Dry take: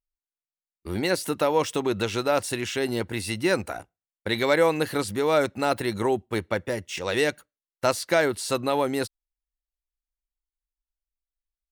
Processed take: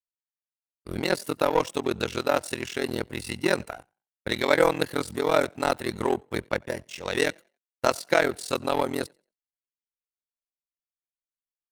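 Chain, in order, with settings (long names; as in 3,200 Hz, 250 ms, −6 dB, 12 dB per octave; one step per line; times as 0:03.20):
ring modulation 21 Hz
echo with shifted repeats 90 ms, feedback 35%, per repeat +33 Hz, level −21.5 dB
power curve on the samples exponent 1.4
level +5.5 dB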